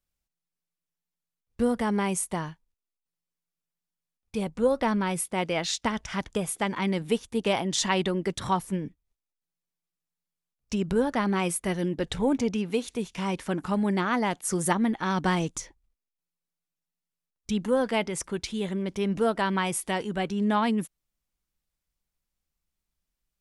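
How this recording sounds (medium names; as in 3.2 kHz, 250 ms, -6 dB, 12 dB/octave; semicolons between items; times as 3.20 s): noise floor -88 dBFS; spectral tilt -4.5 dB/octave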